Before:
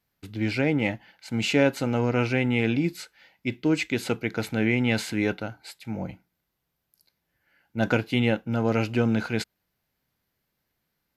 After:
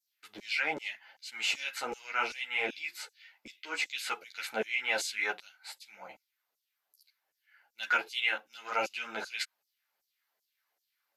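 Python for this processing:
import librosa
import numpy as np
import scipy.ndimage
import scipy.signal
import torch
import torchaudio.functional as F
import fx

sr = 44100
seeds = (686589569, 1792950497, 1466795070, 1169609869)

y = fx.filter_lfo_highpass(x, sr, shape='saw_down', hz=2.6, low_hz=510.0, high_hz=7000.0, q=2.0)
y = fx.ensemble(y, sr)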